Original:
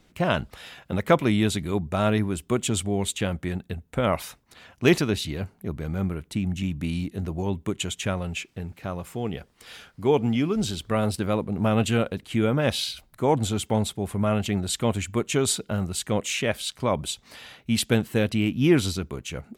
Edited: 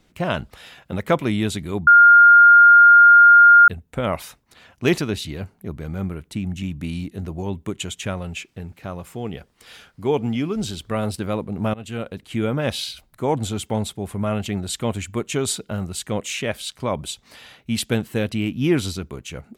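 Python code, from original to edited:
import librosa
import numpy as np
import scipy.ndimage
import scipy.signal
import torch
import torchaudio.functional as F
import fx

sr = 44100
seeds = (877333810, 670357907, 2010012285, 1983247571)

y = fx.edit(x, sr, fx.bleep(start_s=1.87, length_s=1.81, hz=1410.0, db=-6.0),
    fx.fade_in_from(start_s=11.74, length_s=0.78, curve='qsin', floor_db=-22.0), tone=tone)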